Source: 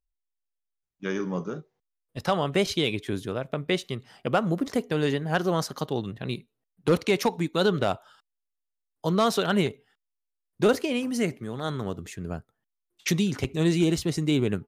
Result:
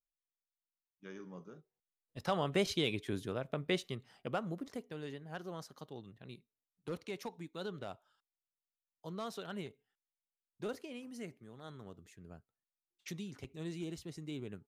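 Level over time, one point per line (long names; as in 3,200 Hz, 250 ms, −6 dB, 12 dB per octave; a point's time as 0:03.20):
0:01.58 −19.5 dB
0:02.40 −8 dB
0:03.81 −8 dB
0:05.02 −19.5 dB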